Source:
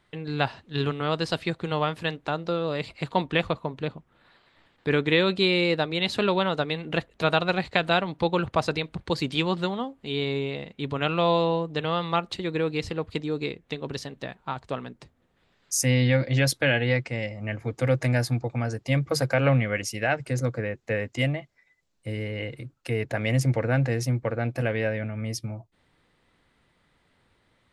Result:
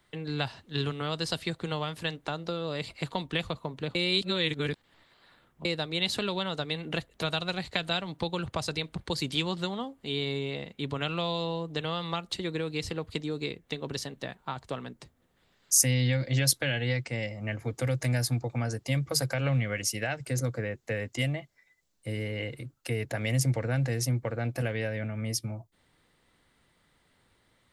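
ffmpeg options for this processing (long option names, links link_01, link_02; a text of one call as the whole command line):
ffmpeg -i in.wav -filter_complex "[0:a]asplit=3[link_01][link_02][link_03];[link_01]atrim=end=3.952[link_04];[link_02]atrim=start=3.948:end=5.652,asetpts=PTS-STARTPTS,areverse[link_05];[link_03]atrim=start=5.648[link_06];[link_04][link_05]acrossfade=duration=0.004:curve1=hsin:curve2=hsin[link_07];[link_07][link_06]acrossfade=duration=0.004:curve1=hsin:curve2=hsin,acrossover=split=150|3000[link_08][link_09][link_10];[link_09]acompressor=threshold=-28dB:ratio=6[link_11];[link_08][link_11][link_10]amix=inputs=3:normalize=0,highshelf=frequency=6500:gain=11,bandreject=frequency=2500:width=25,volume=-2dB" out.wav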